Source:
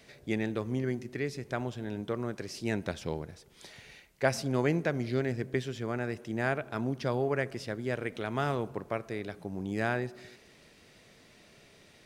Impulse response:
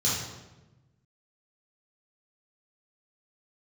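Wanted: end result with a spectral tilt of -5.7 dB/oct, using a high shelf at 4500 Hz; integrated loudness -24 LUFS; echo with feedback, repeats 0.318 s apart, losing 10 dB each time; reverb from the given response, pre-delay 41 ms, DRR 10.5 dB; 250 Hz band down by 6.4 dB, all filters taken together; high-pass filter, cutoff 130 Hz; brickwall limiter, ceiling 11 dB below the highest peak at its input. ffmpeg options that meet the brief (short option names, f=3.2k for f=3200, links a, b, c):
-filter_complex "[0:a]highpass=130,equalizer=f=250:t=o:g=-8,highshelf=f=4.5k:g=-9,alimiter=limit=-23dB:level=0:latency=1,aecho=1:1:318|636|954|1272:0.316|0.101|0.0324|0.0104,asplit=2[a][b];[1:a]atrim=start_sample=2205,adelay=41[c];[b][c]afir=irnorm=-1:irlink=0,volume=-20.5dB[d];[a][d]amix=inputs=2:normalize=0,volume=13dB"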